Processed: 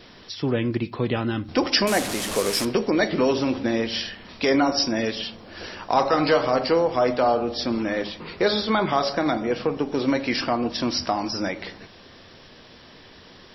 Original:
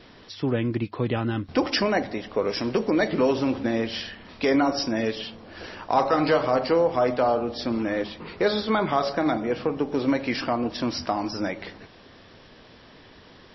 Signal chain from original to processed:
0:01.87–0:02.65: linear delta modulator 64 kbit/s, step −25.5 dBFS
high-shelf EQ 4,600 Hz +9.5 dB
on a send: convolution reverb RT60 0.45 s, pre-delay 5 ms, DRR 16 dB
on the sum: level +1 dB

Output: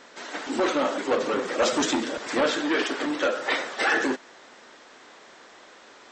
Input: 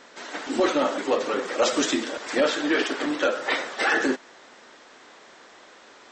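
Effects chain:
0:01.11–0:02.60: low-shelf EQ 200 Hz +10 dB
saturating transformer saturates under 1,000 Hz

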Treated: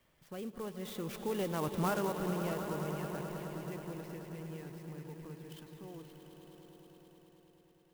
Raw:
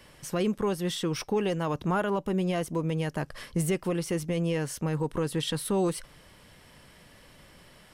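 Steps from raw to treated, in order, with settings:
source passing by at 0:01.77, 18 m/s, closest 8.7 metres
Butterworth low-pass 5,900 Hz 36 dB per octave
on a send: echo that builds up and dies away 106 ms, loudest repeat 5, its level −12 dB
on the sum: converter with an unsteady clock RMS 0.041 ms
level −5.5 dB

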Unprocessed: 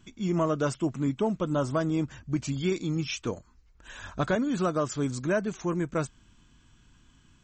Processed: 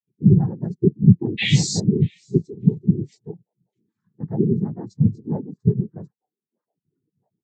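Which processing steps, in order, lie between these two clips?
sub-octave generator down 1 octave, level +3 dB
high-pass filter 160 Hz 24 dB per octave
bass and treble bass +11 dB, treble +12 dB
sound drawn into the spectrogram rise, 0:01.37–0:01.80, 2,800–6,300 Hz −17 dBFS
echo through a band-pass that steps 634 ms, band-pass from 3,600 Hz, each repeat −1.4 octaves, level −11 dB
cochlear-implant simulation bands 6
every bin expanded away from the loudest bin 2.5 to 1
level +2.5 dB

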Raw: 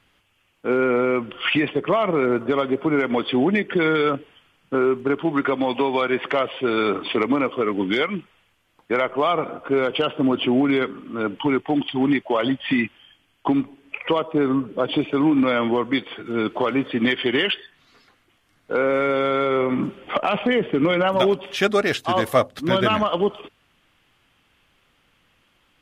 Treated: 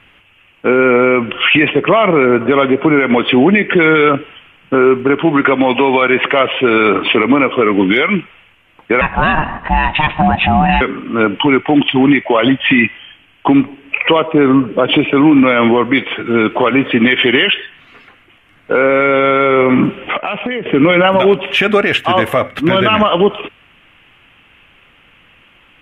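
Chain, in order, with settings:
0:09.01–0:10.81: ring modulation 460 Hz
0:20.01–0:20.66: downward compressor 12 to 1, threshold −30 dBFS, peak gain reduction 14.5 dB
high shelf with overshoot 3,500 Hz −9 dB, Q 3
on a send at −16.5 dB: Butterworth high-pass 1,500 Hz + convolution reverb RT60 0.60 s, pre-delay 3 ms
on the sum: boost into a limiter +13.5 dB
level −1 dB

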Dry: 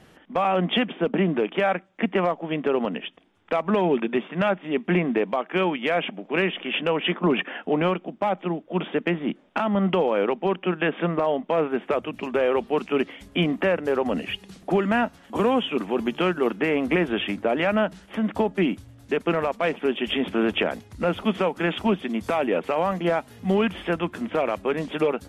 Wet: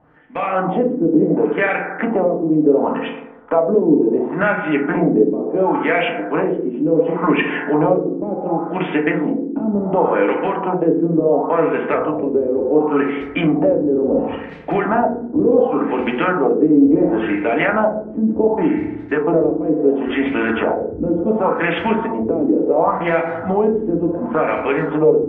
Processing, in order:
automatic gain control gain up to 11.5 dB
feedback delay network reverb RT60 1.1 s, low-frequency decay 0.9×, high-frequency decay 0.3×, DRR −0.5 dB
auto-filter low-pass sine 0.7 Hz 320–2,400 Hz
in parallel at +1 dB: downward compressor, threshold −11 dBFS, peak gain reduction 13 dB
on the sum: level −12.5 dB

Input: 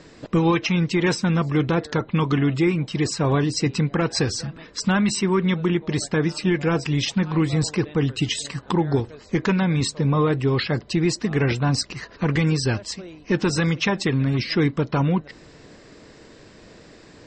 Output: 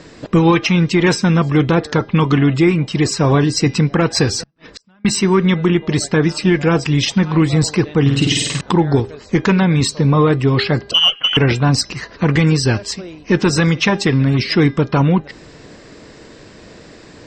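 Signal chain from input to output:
0:10.91–0:11.37: voice inversion scrambler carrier 3,200 Hz
hum removal 403.1 Hz, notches 15
0:04.43–0:05.05: gate with flip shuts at −28 dBFS, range −39 dB
0:08.01–0:08.61: flutter between parallel walls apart 8.6 metres, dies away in 0.9 s
harmonic generator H 4 −33 dB, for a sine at −9 dBFS
level +7 dB

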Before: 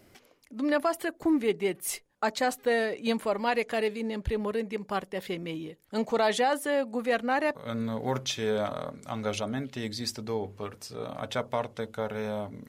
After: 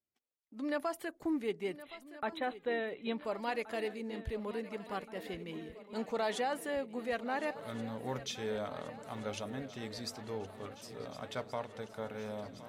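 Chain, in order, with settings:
noise gate −49 dBFS, range −32 dB
0:01.82–0:03.25: linear-phase brick-wall low-pass 4,100 Hz
feedback echo with a long and a short gap by turns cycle 1,424 ms, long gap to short 3 to 1, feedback 70%, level −16 dB
level −9 dB

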